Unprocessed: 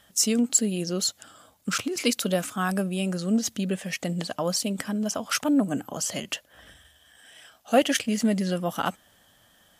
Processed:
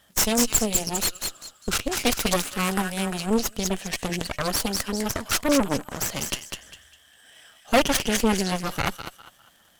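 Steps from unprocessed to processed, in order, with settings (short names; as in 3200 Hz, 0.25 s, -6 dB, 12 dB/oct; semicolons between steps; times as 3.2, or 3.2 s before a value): crackle 170/s -47 dBFS; thin delay 0.201 s, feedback 34%, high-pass 1500 Hz, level -4 dB; added harmonics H 8 -10 dB, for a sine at -7.5 dBFS; gain -1.5 dB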